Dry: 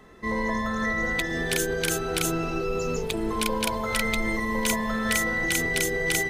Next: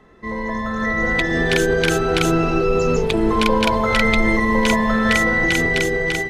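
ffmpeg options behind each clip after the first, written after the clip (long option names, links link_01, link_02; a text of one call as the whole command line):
ffmpeg -i in.wav -filter_complex "[0:a]aemphasis=mode=reproduction:type=50kf,acrossover=split=5700[link_01][link_02];[link_02]alimiter=level_in=11dB:limit=-24dB:level=0:latency=1,volume=-11dB[link_03];[link_01][link_03]amix=inputs=2:normalize=0,dynaudnorm=framelen=390:gausssize=5:maxgain=11.5dB,volume=1dB" out.wav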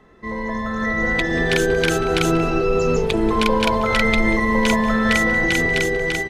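ffmpeg -i in.wav -af "aecho=1:1:186:0.126,volume=-1dB" out.wav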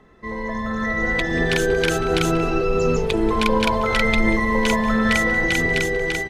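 ffmpeg -i in.wav -af "aphaser=in_gain=1:out_gain=1:delay=2.8:decay=0.2:speed=1.4:type=triangular,volume=-1.5dB" out.wav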